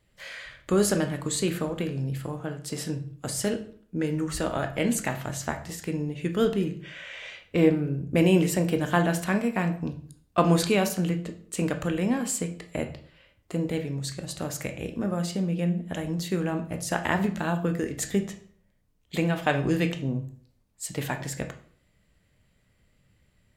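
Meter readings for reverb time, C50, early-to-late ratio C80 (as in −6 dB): 0.50 s, 11.5 dB, 15.5 dB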